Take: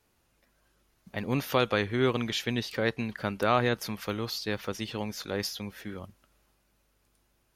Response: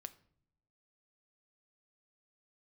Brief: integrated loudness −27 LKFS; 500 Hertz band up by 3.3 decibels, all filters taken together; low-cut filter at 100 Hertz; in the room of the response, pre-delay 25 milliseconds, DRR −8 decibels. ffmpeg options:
-filter_complex "[0:a]highpass=100,equalizer=frequency=500:width_type=o:gain=4,asplit=2[link_01][link_02];[1:a]atrim=start_sample=2205,adelay=25[link_03];[link_02][link_03]afir=irnorm=-1:irlink=0,volume=13dB[link_04];[link_01][link_04]amix=inputs=2:normalize=0,volume=-7dB"

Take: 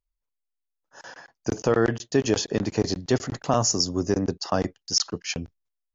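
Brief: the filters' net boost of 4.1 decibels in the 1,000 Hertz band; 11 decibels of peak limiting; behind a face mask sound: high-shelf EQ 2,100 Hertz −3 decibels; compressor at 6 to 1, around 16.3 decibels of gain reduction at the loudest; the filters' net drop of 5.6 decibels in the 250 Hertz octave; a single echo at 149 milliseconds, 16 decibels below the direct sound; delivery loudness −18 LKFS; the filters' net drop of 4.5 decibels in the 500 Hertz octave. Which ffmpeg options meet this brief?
ffmpeg -i in.wav -af "equalizer=frequency=250:width_type=o:gain=-6,equalizer=frequency=500:width_type=o:gain=-5.5,equalizer=frequency=1000:width_type=o:gain=8.5,acompressor=threshold=-34dB:ratio=6,alimiter=level_in=5.5dB:limit=-24dB:level=0:latency=1,volume=-5.5dB,highshelf=frequency=2100:gain=-3,aecho=1:1:149:0.158,volume=25dB" out.wav

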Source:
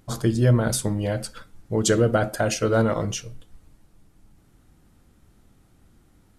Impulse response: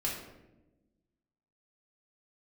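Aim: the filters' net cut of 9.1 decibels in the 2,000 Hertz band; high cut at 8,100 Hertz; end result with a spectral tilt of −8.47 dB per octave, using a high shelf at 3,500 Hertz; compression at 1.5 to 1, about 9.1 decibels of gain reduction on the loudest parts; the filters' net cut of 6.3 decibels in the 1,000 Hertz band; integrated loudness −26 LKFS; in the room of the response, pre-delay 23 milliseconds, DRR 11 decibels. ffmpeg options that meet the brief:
-filter_complex "[0:a]lowpass=8100,equalizer=frequency=1000:width_type=o:gain=-6.5,equalizer=frequency=2000:width_type=o:gain=-8,highshelf=frequency=3500:gain=-8.5,acompressor=threshold=-40dB:ratio=1.5,asplit=2[link_01][link_02];[1:a]atrim=start_sample=2205,adelay=23[link_03];[link_02][link_03]afir=irnorm=-1:irlink=0,volume=-15.5dB[link_04];[link_01][link_04]amix=inputs=2:normalize=0,volume=5.5dB"

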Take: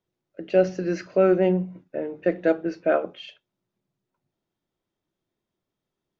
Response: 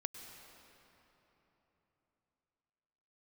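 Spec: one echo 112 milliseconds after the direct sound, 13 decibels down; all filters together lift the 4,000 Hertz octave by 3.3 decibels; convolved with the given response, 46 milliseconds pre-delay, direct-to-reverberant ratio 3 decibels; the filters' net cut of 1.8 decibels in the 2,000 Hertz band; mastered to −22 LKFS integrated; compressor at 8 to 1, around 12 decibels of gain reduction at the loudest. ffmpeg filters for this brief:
-filter_complex "[0:a]equalizer=frequency=2000:width_type=o:gain=-4,equalizer=frequency=4000:width_type=o:gain=6.5,acompressor=threshold=-26dB:ratio=8,aecho=1:1:112:0.224,asplit=2[link_01][link_02];[1:a]atrim=start_sample=2205,adelay=46[link_03];[link_02][link_03]afir=irnorm=-1:irlink=0,volume=-1.5dB[link_04];[link_01][link_04]amix=inputs=2:normalize=0,volume=9dB"

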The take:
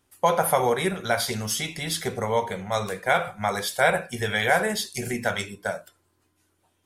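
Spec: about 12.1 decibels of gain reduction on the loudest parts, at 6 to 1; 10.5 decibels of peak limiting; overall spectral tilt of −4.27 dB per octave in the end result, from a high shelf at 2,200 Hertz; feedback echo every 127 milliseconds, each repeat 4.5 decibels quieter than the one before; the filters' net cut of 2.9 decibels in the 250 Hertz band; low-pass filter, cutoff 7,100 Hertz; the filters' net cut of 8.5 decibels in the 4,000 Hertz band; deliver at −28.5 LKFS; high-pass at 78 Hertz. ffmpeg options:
ffmpeg -i in.wav -af "highpass=78,lowpass=7100,equalizer=frequency=250:width_type=o:gain=-4,highshelf=frequency=2200:gain=-4,equalizer=frequency=4000:width_type=o:gain=-6.5,acompressor=threshold=-30dB:ratio=6,alimiter=level_in=4.5dB:limit=-24dB:level=0:latency=1,volume=-4.5dB,aecho=1:1:127|254|381|508|635|762|889|1016|1143:0.596|0.357|0.214|0.129|0.0772|0.0463|0.0278|0.0167|0.01,volume=8.5dB" out.wav

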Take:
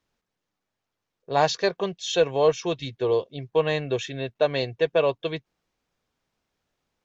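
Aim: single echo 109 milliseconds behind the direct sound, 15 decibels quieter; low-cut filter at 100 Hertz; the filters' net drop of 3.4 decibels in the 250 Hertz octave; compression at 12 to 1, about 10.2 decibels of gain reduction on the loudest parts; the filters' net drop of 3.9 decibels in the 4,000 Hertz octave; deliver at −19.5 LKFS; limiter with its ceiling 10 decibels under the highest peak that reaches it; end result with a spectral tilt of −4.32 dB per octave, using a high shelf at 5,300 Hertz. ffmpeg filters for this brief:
ffmpeg -i in.wav -af "highpass=100,equalizer=frequency=250:width_type=o:gain=-5.5,equalizer=frequency=4000:width_type=o:gain=-3.5,highshelf=frequency=5300:gain=-3,acompressor=threshold=-26dB:ratio=12,alimiter=level_in=2dB:limit=-24dB:level=0:latency=1,volume=-2dB,aecho=1:1:109:0.178,volume=17dB" out.wav

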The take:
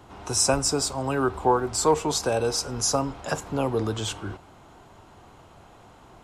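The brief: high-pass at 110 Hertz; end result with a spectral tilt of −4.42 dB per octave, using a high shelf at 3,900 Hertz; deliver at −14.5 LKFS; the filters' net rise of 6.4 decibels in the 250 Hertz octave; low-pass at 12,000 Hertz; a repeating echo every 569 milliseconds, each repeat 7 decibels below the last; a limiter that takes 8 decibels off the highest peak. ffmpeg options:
ffmpeg -i in.wav -af "highpass=110,lowpass=12000,equalizer=frequency=250:width_type=o:gain=8,highshelf=frequency=3900:gain=-6,alimiter=limit=-15.5dB:level=0:latency=1,aecho=1:1:569|1138|1707|2276|2845:0.447|0.201|0.0905|0.0407|0.0183,volume=11.5dB" out.wav

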